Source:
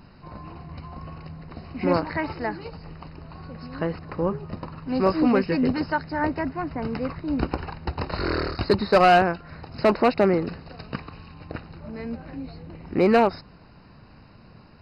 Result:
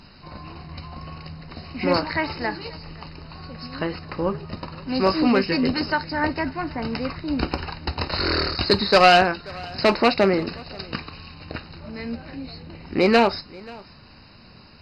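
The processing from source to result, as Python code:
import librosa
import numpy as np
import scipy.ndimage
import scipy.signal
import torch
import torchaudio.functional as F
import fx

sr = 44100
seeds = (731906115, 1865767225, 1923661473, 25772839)

p1 = fx.peak_eq(x, sr, hz=4500.0, db=12.0, octaves=2.0)
p2 = p1 + fx.echo_single(p1, sr, ms=533, db=-23.0, dry=0)
y = fx.rev_gated(p2, sr, seeds[0], gate_ms=80, shape='falling', drr_db=11.0)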